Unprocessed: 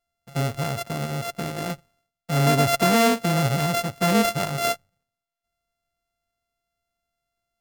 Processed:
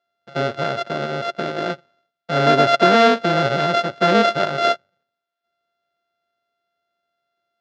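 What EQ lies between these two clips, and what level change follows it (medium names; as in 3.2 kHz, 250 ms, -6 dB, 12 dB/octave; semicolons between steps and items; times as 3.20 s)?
cabinet simulation 190–5100 Hz, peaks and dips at 370 Hz +9 dB, 590 Hz +9 dB, 1.5 kHz +10 dB, 3.6 kHz +5 dB; +2.0 dB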